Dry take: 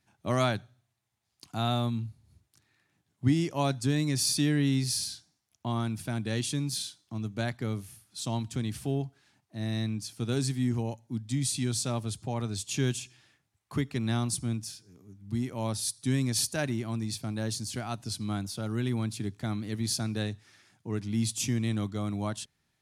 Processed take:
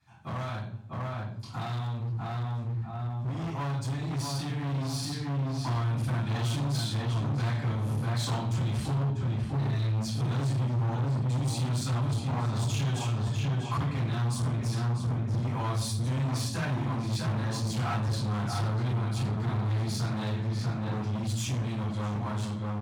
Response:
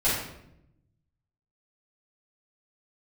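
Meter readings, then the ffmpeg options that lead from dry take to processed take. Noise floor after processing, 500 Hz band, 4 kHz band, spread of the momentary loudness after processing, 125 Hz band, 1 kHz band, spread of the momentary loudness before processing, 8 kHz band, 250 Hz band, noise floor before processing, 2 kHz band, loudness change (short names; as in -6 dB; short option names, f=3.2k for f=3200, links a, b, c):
-36 dBFS, -3.0 dB, -3.0 dB, 4 LU, +5.0 dB, +3.0 dB, 10 LU, -7.0 dB, -3.0 dB, -78 dBFS, -0.5 dB, +0.5 dB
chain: -filter_complex "[0:a]asplit=2[a][b];[b]alimiter=level_in=1dB:limit=-24dB:level=0:latency=1,volume=-1dB,volume=1.5dB[c];[a][c]amix=inputs=2:normalize=0,asplit=2[d][e];[e]adelay=644,lowpass=f=1.9k:p=1,volume=-5.5dB,asplit=2[f][g];[g]adelay=644,lowpass=f=1.9k:p=1,volume=0.3,asplit=2[h][i];[i]adelay=644,lowpass=f=1.9k:p=1,volume=0.3,asplit=2[j][k];[k]adelay=644,lowpass=f=1.9k:p=1,volume=0.3[l];[d][f][h][j][l]amix=inputs=5:normalize=0,acompressor=threshold=-32dB:ratio=6,highshelf=f=7.4k:g=-12,asplit=2[m][n];[n]adelay=49,volume=-13.5dB[o];[m][o]amix=inputs=2:normalize=0[p];[1:a]atrim=start_sample=2205,asetrate=70560,aresample=44100[q];[p][q]afir=irnorm=-1:irlink=0,asoftclip=type=hard:threshold=-25dB,highpass=80,dynaudnorm=f=970:g=9:m=5dB,equalizer=f=125:t=o:w=1:g=5,equalizer=f=250:t=o:w=1:g=-5,equalizer=f=500:t=o:w=1:g=-5,equalizer=f=1k:t=o:w=1:g=5,volume=-7.5dB"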